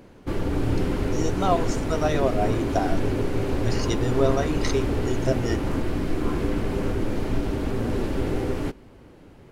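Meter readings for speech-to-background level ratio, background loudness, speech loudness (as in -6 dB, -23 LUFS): -1.0 dB, -27.0 LUFS, -28.0 LUFS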